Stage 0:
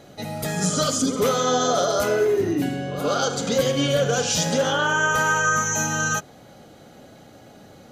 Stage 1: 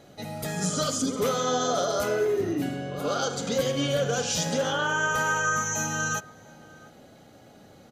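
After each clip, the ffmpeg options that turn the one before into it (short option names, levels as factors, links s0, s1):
-filter_complex "[0:a]asplit=2[s0][s1];[s1]adelay=699.7,volume=0.0891,highshelf=f=4000:g=-15.7[s2];[s0][s2]amix=inputs=2:normalize=0,volume=0.562"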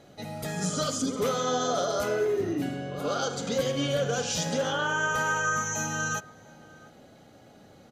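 -af "highshelf=f=9800:g=-5,volume=0.841"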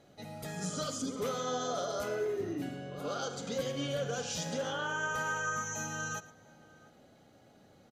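-af "aecho=1:1:113:0.119,volume=0.422"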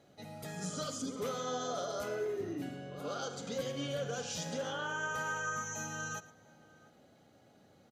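-af "highpass=59,volume=0.75"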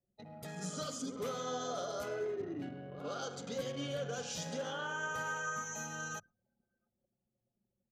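-af "bandreject=f=104.9:t=h:w=4,bandreject=f=209.8:t=h:w=4,bandreject=f=314.7:t=h:w=4,anlmdn=0.0158,volume=0.841"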